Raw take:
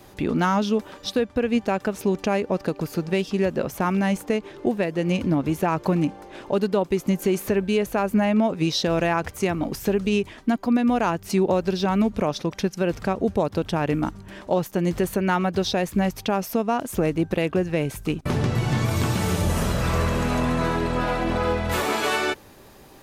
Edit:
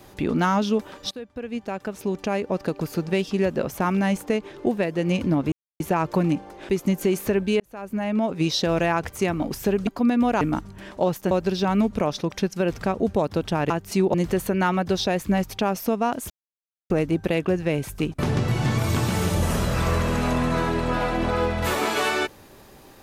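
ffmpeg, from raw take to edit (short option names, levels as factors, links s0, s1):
-filter_complex "[0:a]asplit=11[s0][s1][s2][s3][s4][s5][s6][s7][s8][s9][s10];[s0]atrim=end=1.11,asetpts=PTS-STARTPTS,afade=t=out:st=1.106:d=0.004:c=hsin:silence=0.158489[s11];[s1]atrim=start=1.11:end=5.52,asetpts=PTS-STARTPTS,afade=t=in:d=1.72:silence=0.158489,afade=t=out:st=4.406:d=0.004:c=hsin,apad=pad_dur=0.28[s12];[s2]atrim=start=5.52:end=6.412,asetpts=PTS-STARTPTS,afade=t=in:d=0.004:c=hsin[s13];[s3]atrim=start=6.898:end=7.81,asetpts=PTS-STARTPTS,afade=t=out:st=0.908:d=0.004:c=hsin[s14];[s4]atrim=start=7.81:end=10.082,asetpts=PTS-STARTPTS,afade=t=in:d=0.84[s15];[s5]atrim=start=10.538:end=11.082[s16];[s6]atrim=start=13.908:end=14.812[s17];[s7]atrim=start=11.518:end=13.912[s18];[s8]atrim=start=11.078:end=11.522[s19];[s9]atrim=start=14.808:end=16.97,asetpts=PTS-STARTPTS,afade=t=out:st=2.158:d=0.004:c=hsin,apad=pad_dur=0.6[s20];[s10]atrim=start=16.97,asetpts=PTS-STARTPTS,afade=t=in:d=0.004:c=hsin[s21];[s11][s12][s13]concat=n=3:v=0:a=1[s22];[s14][s15]concat=n=2:v=0:a=1[s23];[s22][s23]acrossfade=d=0.004:c1=hsin:c2=hsin[s24];[s24][s16]acrossfade=d=0.004:c1=hsin:c2=hsin[s25];[s25][s17]acrossfade=d=0.004:c1=hsin:c2=hsin[s26];[s26][s18]acrossfade=d=0.004:c1=hsin:c2=hsin[s27];[s27][s19]acrossfade=d=0.004:c1=hsin:c2=hsin[s28];[s20][s21]concat=n=2:v=0:a=1[s29];[s28][s29]acrossfade=d=0.004:c1=hsin:c2=hsin"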